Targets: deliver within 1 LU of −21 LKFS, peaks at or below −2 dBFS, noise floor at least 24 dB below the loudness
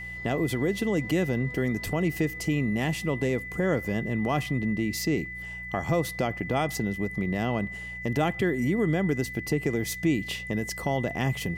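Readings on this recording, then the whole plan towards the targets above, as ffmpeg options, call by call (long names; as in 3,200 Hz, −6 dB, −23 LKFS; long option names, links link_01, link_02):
mains hum 60 Hz; hum harmonics up to 180 Hz; level of the hum −42 dBFS; interfering tone 2,000 Hz; level of the tone −36 dBFS; integrated loudness −28.0 LKFS; sample peak −14.0 dBFS; target loudness −21.0 LKFS
→ -af "bandreject=frequency=60:width_type=h:width=4,bandreject=frequency=120:width_type=h:width=4,bandreject=frequency=180:width_type=h:width=4"
-af "bandreject=frequency=2000:width=30"
-af "volume=7dB"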